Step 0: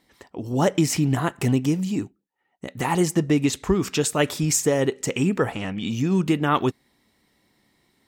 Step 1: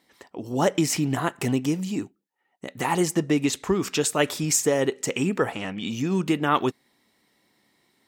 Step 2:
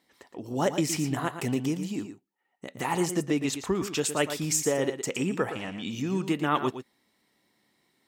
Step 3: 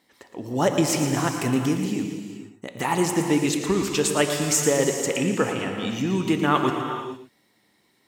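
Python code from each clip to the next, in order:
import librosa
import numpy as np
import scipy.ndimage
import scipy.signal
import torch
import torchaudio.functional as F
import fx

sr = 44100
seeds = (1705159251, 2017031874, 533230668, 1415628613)

y1 = fx.highpass(x, sr, hz=230.0, slope=6)
y2 = y1 + 10.0 ** (-10.0 / 20.0) * np.pad(y1, (int(115 * sr / 1000.0), 0))[:len(y1)]
y2 = y2 * 10.0 ** (-4.5 / 20.0)
y3 = fx.rev_gated(y2, sr, seeds[0], gate_ms=490, shape='flat', drr_db=5.0)
y3 = y3 * 10.0 ** (4.5 / 20.0)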